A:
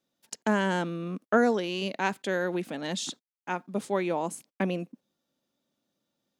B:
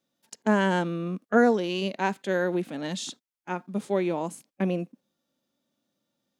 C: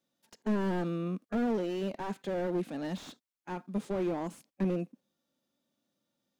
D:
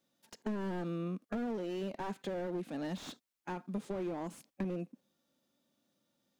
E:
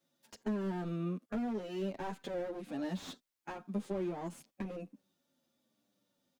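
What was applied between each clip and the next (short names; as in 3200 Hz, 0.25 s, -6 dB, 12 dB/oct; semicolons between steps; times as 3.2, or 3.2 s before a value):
harmonic-percussive split percussive -8 dB; gain +3.5 dB
slew limiter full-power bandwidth 23 Hz; gain -3 dB
compressor 3:1, threshold -40 dBFS, peak gain reduction 11.5 dB; gain +3 dB
endless flanger 8.6 ms -0.95 Hz; gain +2.5 dB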